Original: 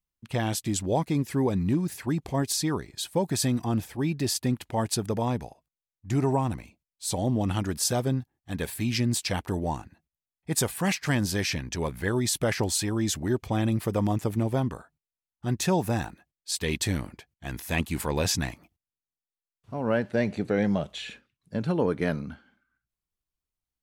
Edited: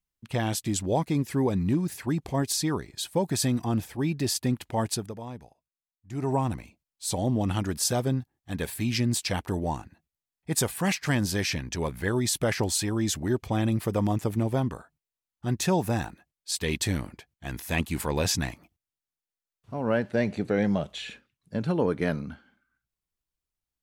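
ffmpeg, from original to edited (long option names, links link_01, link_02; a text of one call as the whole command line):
ffmpeg -i in.wav -filter_complex "[0:a]asplit=3[link_01][link_02][link_03];[link_01]atrim=end=5.14,asetpts=PTS-STARTPTS,afade=type=out:start_time=4.88:duration=0.26:silence=0.266073[link_04];[link_02]atrim=start=5.14:end=6.12,asetpts=PTS-STARTPTS,volume=-11.5dB[link_05];[link_03]atrim=start=6.12,asetpts=PTS-STARTPTS,afade=type=in:duration=0.26:silence=0.266073[link_06];[link_04][link_05][link_06]concat=n=3:v=0:a=1" out.wav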